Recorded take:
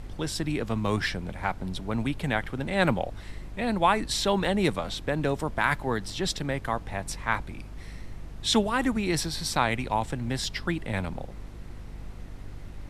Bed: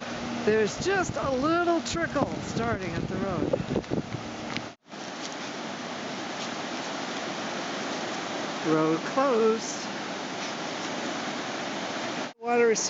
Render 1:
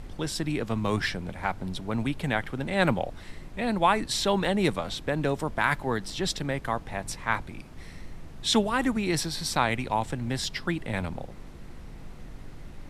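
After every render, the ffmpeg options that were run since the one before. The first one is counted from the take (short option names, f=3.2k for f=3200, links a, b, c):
-af "bandreject=f=50:t=h:w=4,bandreject=f=100:t=h:w=4"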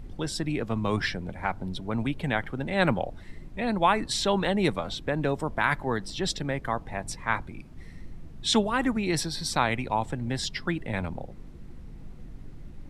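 -af "afftdn=nr=9:nf=-44"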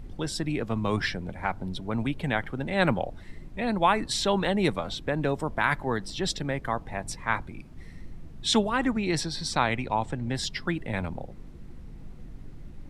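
-filter_complex "[0:a]asettb=1/sr,asplit=3[a][b][c];[a]atrim=end=8.694[d];[b]atrim=start=8.69:end=10.35,asetpts=PTS-STARTPTS,afade=t=in:d=0.004:c=qsin,afade=t=out:st=1.656:d=0.004:c=qsin,lowpass=8.3k[e];[c]atrim=start=10.346[f];[d][e]acrossfade=d=0.004:c1=hsin:c2=qsin[g];[g][f]acrossfade=d=0.004:c1=qsin:c2=hsin"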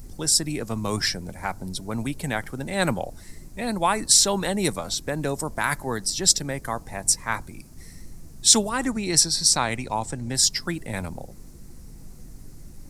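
-af "aexciter=amount=8.3:drive=5:freq=4.8k"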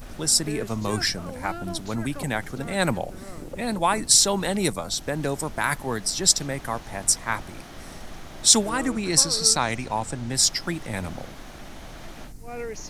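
-filter_complex "[1:a]volume=-12dB[a];[0:a][a]amix=inputs=2:normalize=0"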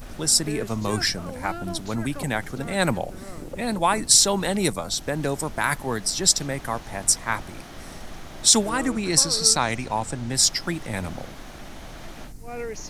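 -af "volume=1dB,alimiter=limit=-3dB:level=0:latency=1"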